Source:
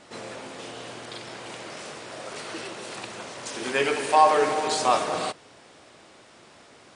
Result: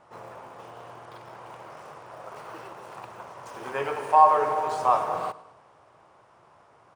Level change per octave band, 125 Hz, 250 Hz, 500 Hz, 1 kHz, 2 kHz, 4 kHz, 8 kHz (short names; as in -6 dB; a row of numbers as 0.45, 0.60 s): -2.5 dB, -9.5 dB, -3.5 dB, +1.5 dB, -8.5 dB, under -15 dB, under -15 dB